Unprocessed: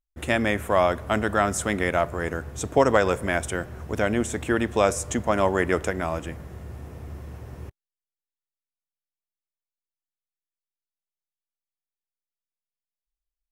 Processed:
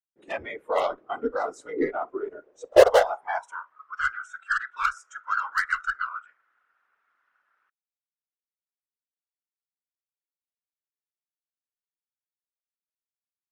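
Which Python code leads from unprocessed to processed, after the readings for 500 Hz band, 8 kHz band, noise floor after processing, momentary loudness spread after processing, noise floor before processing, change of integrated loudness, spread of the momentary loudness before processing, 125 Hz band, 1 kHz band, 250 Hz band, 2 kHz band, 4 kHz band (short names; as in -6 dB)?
-0.5 dB, -12.0 dB, under -85 dBFS, 19 LU, under -85 dBFS, -1.5 dB, 18 LU, under -20 dB, -1.5 dB, -11.0 dB, -1.0 dB, -3.0 dB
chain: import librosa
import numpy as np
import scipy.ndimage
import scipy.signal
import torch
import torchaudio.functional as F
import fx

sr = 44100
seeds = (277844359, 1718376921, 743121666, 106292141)

y = fx.filter_sweep_highpass(x, sr, from_hz=370.0, to_hz=1400.0, start_s=2.21, end_s=4.05, q=7.4)
y = scipy.signal.sosfilt(scipy.signal.butter(2, 3600.0, 'lowpass', fs=sr, output='sos'), y)
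y = fx.cheby_harmonics(y, sr, harmonics=(3, 4, 5), levels_db=(-15, -29, -23), full_scale_db=-4.5)
y = fx.whisperise(y, sr, seeds[0])
y = fx.noise_reduce_blind(y, sr, reduce_db=18)
y = F.gain(torch.from_numpy(y), -5.5).numpy()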